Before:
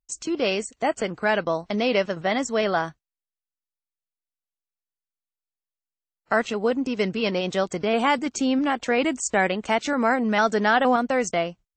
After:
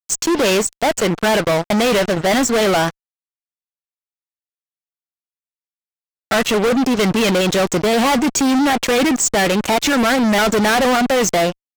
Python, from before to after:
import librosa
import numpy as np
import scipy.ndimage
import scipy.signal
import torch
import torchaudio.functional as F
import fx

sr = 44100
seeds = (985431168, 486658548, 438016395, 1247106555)

y = fx.wow_flutter(x, sr, seeds[0], rate_hz=2.1, depth_cents=28.0)
y = fx.fuzz(y, sr, gain_db=34.0, gate_db=-40.0)